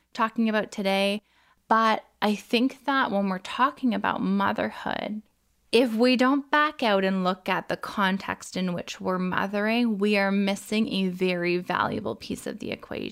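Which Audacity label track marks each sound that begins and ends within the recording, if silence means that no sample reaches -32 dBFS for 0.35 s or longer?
1.700000	5.190000	sound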